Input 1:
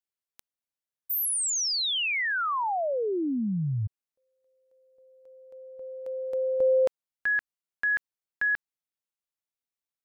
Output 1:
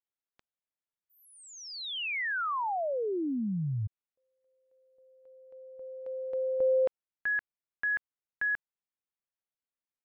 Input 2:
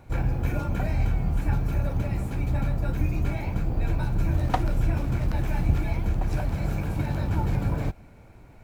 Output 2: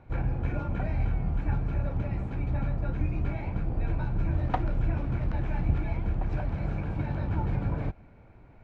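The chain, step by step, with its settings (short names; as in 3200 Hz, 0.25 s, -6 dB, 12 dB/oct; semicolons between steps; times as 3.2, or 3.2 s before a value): LPF 2700 Hz 12 dB/oct; gain -3.5 dB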